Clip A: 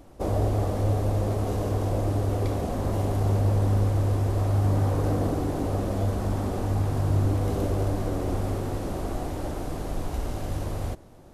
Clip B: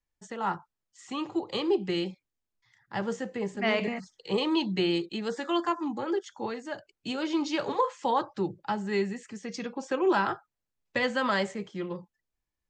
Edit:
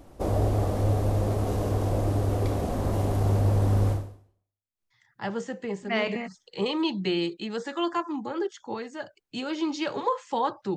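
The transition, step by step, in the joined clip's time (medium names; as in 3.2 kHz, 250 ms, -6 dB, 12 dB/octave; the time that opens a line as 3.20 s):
clip A
4.37 s: go over to clip B from 2.09 s, crossfade 0.90 s exponential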